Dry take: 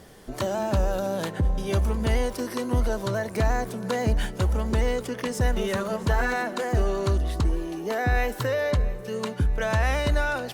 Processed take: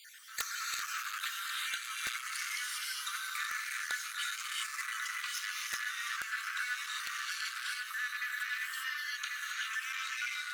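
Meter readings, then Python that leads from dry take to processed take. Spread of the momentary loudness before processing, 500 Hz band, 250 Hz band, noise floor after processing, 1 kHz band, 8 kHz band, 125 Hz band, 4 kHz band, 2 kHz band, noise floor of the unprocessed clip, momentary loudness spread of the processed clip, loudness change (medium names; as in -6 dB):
5 LU, under -40 dB, under -40 dB, -44 dBFS, -11.5 dB, +1.0 dB, under -40 dB, +0.5 dB, -2.5 dB, -38 dBFS, 1 LU, -10.0 dB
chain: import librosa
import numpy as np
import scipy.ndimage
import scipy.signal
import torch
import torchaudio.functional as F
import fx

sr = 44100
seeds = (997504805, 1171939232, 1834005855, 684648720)

y = fx.spec_dropout(x, sr, seeds[0], share_pct=57)
y = fx.rev_gated(y, sr, seeds[1], gate_ms=430, shape='rising', drr_db=-4.5)
y = 10.0 ** (-20.5 / 20.0) * np.tanh(y / 10.0 ** (-20.5 / 20.0))
y = scipy.signal.sosfilt(scipy.signal.butter(16, 1200.0, 'highpass', fs=sr, output='sos'), y)
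y = y + 10.0 ** (-8.5 / 20.0) * np.pad(y, (int(1091 * sr / 1000.0), 0))[:len(y)]
y = fx.rider(y, sr, range_db=5, speed_s=0.5)
y = (np.mod(10.0 ** (24.0 / 20.0) * y + 1.0, 2.0) - 1.0) / 10.0 ** (24.0 / 20.0)
y = fx.dmg_noise_colour(y, sr, seeds[2], colour='white', level_db=-79.0)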